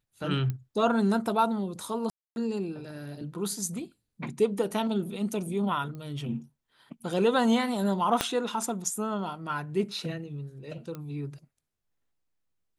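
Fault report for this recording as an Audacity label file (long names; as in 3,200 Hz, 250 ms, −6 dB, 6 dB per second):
0.500000	0.500000	click −20 dBFS
2.100000	2.360000	drop-out 261 ms
5.950000	5.950000	click −30 dBFS
8.210000	8.210000	click −8 dBFS
10.950000	10.950000	click −25 dBFS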